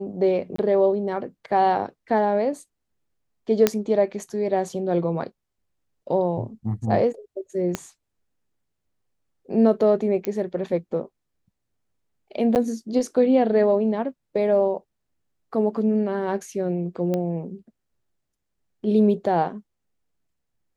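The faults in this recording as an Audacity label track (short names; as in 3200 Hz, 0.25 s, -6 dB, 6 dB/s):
0.560000	0.580000	gap 24 ms
3.670000	3.670000	pop -3 dBFS
7.750000	7.750000	pop -11 dBFS
10.250000	10.250000	pop -13 dBFS
12.550000	12.560000	gap 9.1 ms
17.140000	17.140000	pop -14 dBFS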